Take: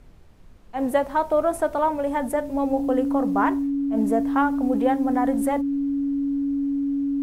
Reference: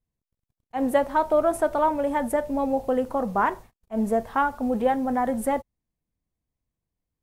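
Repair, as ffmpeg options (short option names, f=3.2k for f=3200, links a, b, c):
-af "bandreject=f=280:w=30,agate=range=-21dB:threshold=-34dB"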